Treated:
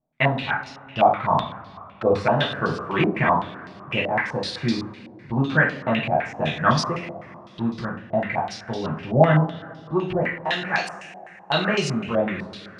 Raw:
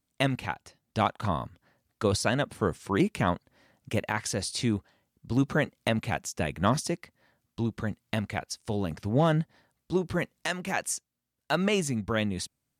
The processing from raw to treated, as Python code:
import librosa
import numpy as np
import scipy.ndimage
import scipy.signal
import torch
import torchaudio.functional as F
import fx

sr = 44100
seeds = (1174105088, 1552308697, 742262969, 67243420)

y = fx.rev_double_slope(x, sr, seeds[0], early_s=0.49, late_s=3.1, knee_db=-19, drr_db=-5.0)
y = fx.filter_held_lowpass(y, sr, hz=7.9, low_hz=700.0, high_hz=4700.0)
y = y * librosa.db_to_amplitude(-2.0)